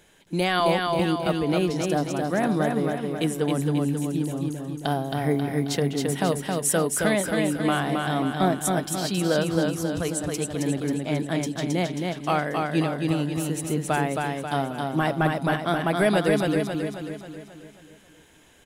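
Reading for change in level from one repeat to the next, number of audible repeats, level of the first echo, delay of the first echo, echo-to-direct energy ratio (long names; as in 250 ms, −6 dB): −5.5 dB, 6, −3.5 dB, 269 ms, −2.0 dB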